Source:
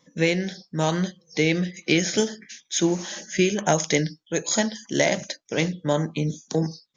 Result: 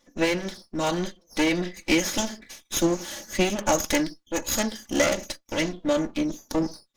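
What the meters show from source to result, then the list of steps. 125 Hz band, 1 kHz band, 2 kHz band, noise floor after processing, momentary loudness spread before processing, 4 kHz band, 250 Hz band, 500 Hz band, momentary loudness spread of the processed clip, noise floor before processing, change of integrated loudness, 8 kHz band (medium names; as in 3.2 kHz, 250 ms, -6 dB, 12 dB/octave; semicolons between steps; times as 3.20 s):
-8.5 dB, 0.0 dB, -1.5 dB, -67 dBFS, 7 LU, -1.5 dB, -1.0 dB, -2.0 dB, 8 LU, -70 dBFS, -1.5 dB, -1.5 dB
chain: comb filter that takes the minimum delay 3.5 ms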